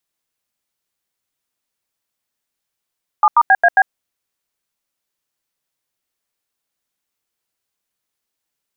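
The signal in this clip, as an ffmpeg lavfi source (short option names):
-f lavfi -i "aevalsrc='0.335*clip(min(mod(t,0.135),0.05-mod(t,0.135))/0.002,0,1)*(eq(floor(t/0.135),0)*(sin(2*PI*852*mod(t,0.135))+sin(2*PI*1209*mod(t,0.135)))+eq(floor(t/0.135),1)*(sin(2*PI*941*mod(t,0.135))+sin(2*PI*1209*mod(t,0.135)))+eq(floor(t/0.135),2)*(sin(2*PI*770*mod(t,0.135))+sin(2*PI*1633*mod(t,0.135)))+eq(floor(t/0.135),3)*(sin(2*PI*697*mod(t,0.135))+sin(2*PI*1633*mod(t,0.135)))+eq(floor(t/0.135),4)*(sin(2*PI*770*mod(t,0.135))+sin(2*PI*1633*mod(t,0.135))))':d=0.675:s=44100"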